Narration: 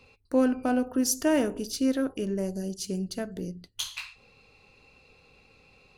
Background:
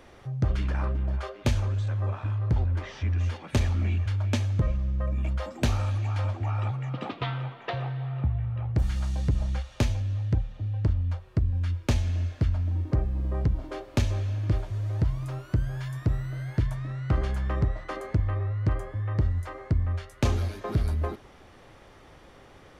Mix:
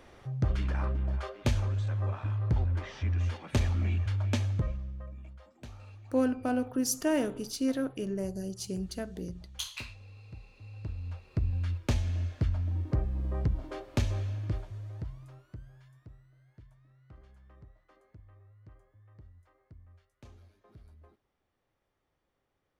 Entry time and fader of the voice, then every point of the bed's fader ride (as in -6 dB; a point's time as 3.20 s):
5.80 s, -4.0 dB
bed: 4.49 s -3 dB
5.39 s -22 dB
10.38 s -22 dB
11.46 s -4 dB
14.22 s -4 dB
16.32 s -29 dB